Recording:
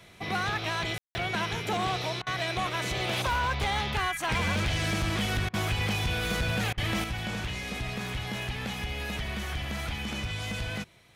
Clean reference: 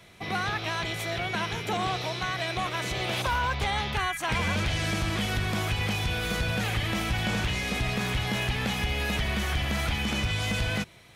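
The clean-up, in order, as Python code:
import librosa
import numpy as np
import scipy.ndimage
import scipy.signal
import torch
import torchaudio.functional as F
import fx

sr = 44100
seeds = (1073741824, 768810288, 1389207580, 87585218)

y = fx.fix_declip(x, sr, threshold_db=-23.0)
y = fx.fix_ambience(y, sr, seeds[0], print_start_s=10.64, print_end_s=11.14, start_s=0.98, end_s=1.15)
y = fx.fix_interpolate(y, sr, at_s=(2.22, 5.49, 6.73), length_ms=45.0)
y = fx.fix_level(y, sr, at_s=7.04, step_db=5.5)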